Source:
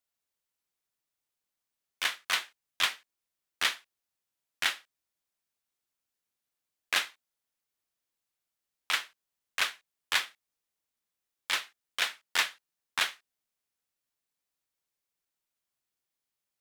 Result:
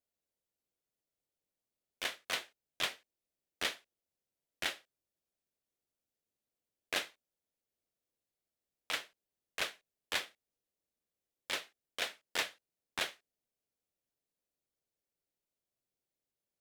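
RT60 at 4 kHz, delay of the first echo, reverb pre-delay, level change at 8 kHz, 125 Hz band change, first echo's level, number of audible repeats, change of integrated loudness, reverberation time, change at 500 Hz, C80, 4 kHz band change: none, none, none, -7.0 dB, n/a, none, none, -7.5 dB, none, +2.5 dB, none, -7.5 dB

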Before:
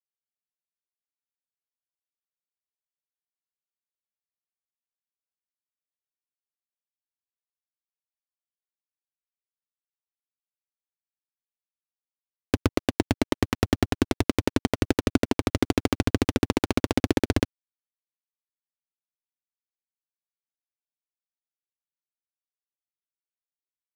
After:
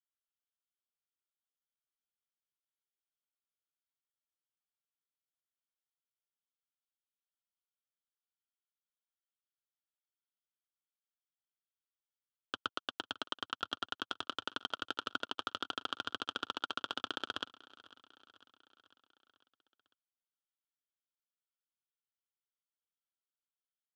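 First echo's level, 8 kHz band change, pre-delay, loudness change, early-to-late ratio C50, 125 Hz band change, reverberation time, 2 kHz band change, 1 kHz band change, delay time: -21.0 dB, -18.5 dB, none, -13.5 dB, none, -35.0 dB, none, -8.0 dB, -7.0 dB, 0.499 s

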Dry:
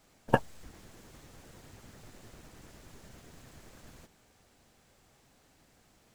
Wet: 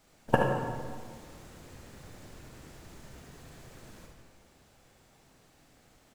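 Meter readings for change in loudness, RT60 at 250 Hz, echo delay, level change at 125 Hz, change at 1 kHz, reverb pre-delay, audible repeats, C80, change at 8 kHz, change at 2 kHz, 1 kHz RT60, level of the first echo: -1.0 dB, 1.9 s, 75 ms, +4.0 dB, +3.0 dB, 37 ms, 1, 3.5 dB, +1.5 dB, +3.0 dB, 1.7 s, -7.0 dB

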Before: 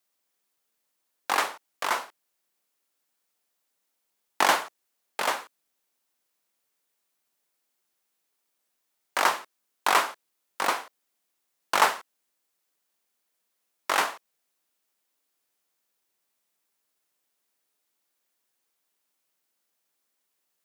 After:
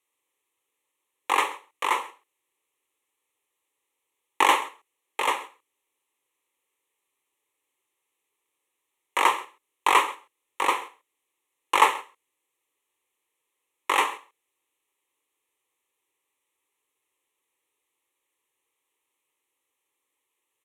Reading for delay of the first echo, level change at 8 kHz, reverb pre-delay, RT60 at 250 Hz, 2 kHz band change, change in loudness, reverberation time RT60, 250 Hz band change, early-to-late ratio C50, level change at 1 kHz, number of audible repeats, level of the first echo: 0.133 s, -1.5 dB, none, none, +1.0 dB, +2.0 dB, none, +2.0 dB, none, +3.0 dB, 1, -20.5 dB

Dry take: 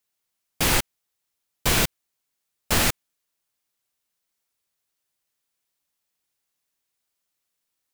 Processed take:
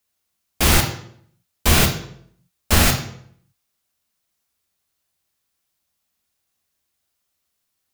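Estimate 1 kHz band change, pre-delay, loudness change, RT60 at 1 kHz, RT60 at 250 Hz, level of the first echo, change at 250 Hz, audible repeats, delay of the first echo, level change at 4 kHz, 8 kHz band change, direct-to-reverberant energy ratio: +5.0 dB, 3 ms, +5.0 dB, 0.60 s, 0.80 s, none, +7.0 dB, none, none, +4.5 dB, +4.5 dB, 3.5 dB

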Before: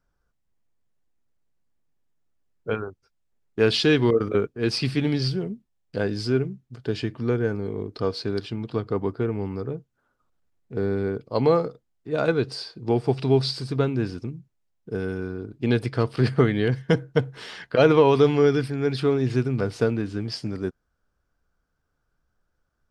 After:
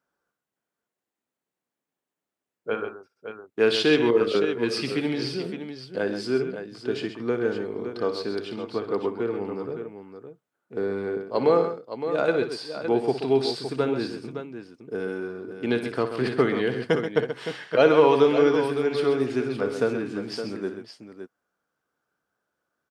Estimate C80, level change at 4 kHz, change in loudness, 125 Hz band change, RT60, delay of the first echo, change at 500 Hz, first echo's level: none, -1.5 dB, -1.0 dB, -11.0 dB, none, 59 ms, +0.5 dB, -11.0 dB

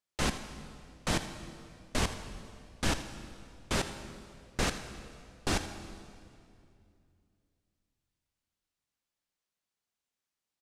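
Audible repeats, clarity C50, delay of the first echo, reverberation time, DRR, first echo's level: 1, 9.0 dB, 81 ms, 2.5 s, 8.5 dB, -14.5 dB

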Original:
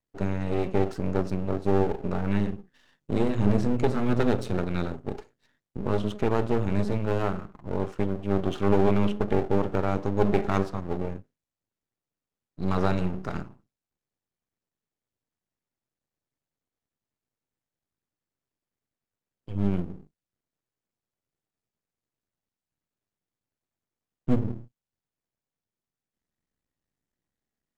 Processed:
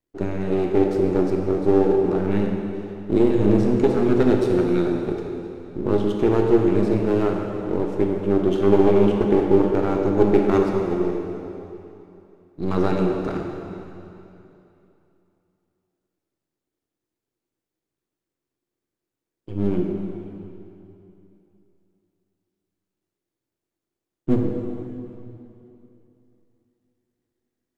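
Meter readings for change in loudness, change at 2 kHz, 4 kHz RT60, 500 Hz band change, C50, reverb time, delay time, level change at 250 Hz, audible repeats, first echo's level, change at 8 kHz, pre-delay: +6.5 dB, +2.0 dB, 2.7 s, +9.0 dB, 3.0 dB, 2.9 s, none, +7.5 dB, none, none, n/a, 9 ms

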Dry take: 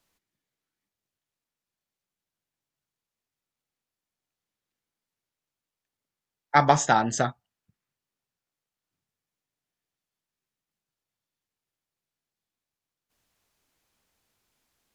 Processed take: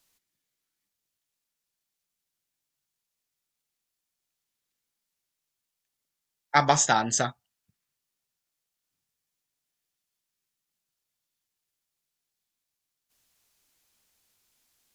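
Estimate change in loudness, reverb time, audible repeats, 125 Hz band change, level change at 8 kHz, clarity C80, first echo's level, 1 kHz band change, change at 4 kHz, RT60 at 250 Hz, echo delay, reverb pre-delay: -1.0 dB, none, none, -3.5 dB, +6.0 dB, none, none, -2.5 dB, +4.0 dB, none, none, none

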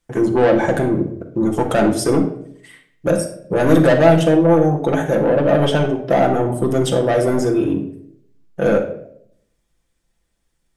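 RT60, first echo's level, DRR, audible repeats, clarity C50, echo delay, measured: 0.65 s, none, 2.0 dB, none, 8.5 dB, none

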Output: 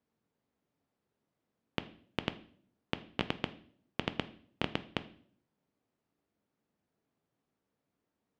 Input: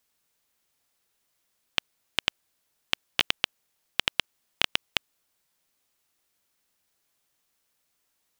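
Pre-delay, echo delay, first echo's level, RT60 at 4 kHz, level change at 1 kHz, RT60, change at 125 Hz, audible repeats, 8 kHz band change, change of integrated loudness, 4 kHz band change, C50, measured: 4 ms, none, none, 0.50 s, -4.0 dB, 0.55 s, +6.0 dB, none, -21.5 dB, -10.5 dB, -14.5 dB, 16.5 dB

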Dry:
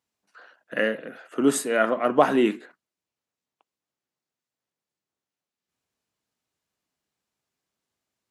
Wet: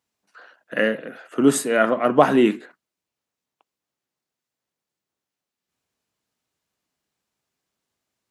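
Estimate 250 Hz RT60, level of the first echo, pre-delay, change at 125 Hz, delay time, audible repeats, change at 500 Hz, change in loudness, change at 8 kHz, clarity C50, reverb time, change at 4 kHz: none, none, none, +8.0 dB, none, none, +3.5 dB, +3.5 dB, +3.0 dB, none, none, +3.0 dB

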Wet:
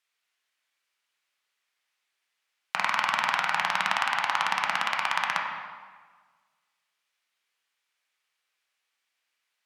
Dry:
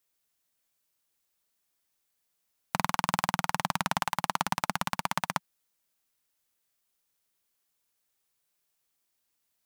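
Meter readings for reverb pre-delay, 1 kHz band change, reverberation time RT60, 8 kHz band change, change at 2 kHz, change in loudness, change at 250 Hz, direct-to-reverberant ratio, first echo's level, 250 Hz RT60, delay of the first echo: 9 ms, +3.5 dB, 1.5 s, -3.5 dB, +8.5 dB, +4.5 dB, -11.0 dB, -0.5 dB, none, 1.6 s, none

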